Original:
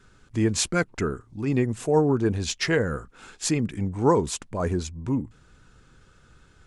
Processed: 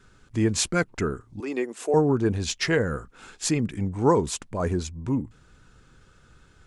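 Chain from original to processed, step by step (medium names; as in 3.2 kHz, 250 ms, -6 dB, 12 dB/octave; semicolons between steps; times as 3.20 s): 1.40–1.94 s: high-pass 320 Hz 24 dB/octave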